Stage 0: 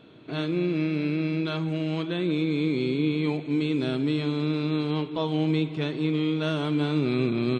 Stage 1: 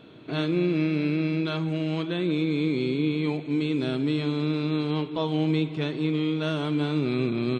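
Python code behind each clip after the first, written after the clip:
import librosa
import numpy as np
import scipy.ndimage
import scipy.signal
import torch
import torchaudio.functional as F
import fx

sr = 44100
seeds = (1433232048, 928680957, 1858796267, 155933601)

y = fx.rider(x, sr, range_db=4, speed_s=2.0)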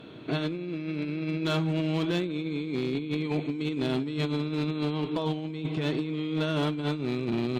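y = fx.over_compress(x, sr, threshold_db=-28.0, ratio=-0.5)
y = fx.clip_asym(y, sr, top_db=-22.0, bottom_db=-20.0)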